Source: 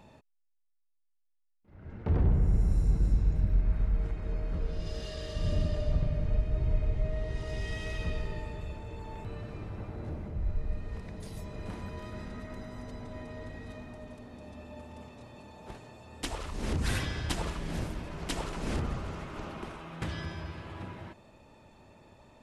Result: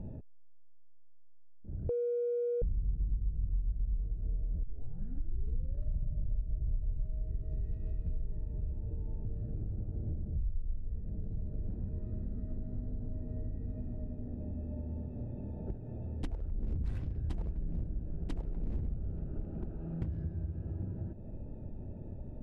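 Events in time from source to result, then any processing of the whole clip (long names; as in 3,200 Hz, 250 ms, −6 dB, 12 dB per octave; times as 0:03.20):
0:01.89–0:02.62: beep over 480 Hz −19.5 dBFS
0:04.63: tape start 1.20 s
whole clip: adaptive Wiener filter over 41 samples; spectral tilt −3.5 dB per octave; downward compressor 4 to 1, threshold −42 dBFS; level +5.5 dB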